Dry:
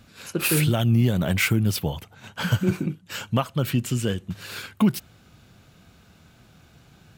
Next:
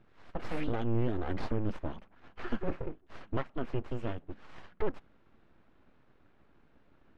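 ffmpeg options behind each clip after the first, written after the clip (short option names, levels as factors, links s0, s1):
-af "aeval=exprs='abs(val(0))':c=same,lowpass=1800,volume=0.398"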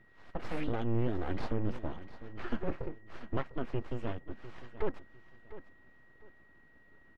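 -af "aeval=exprs='val(0)+0.000708*sin(2*PI*1900*n/s)':c=same,aecho=1:1:701|1402|2103:0.178|0.0445|0.0111,volume=0.891"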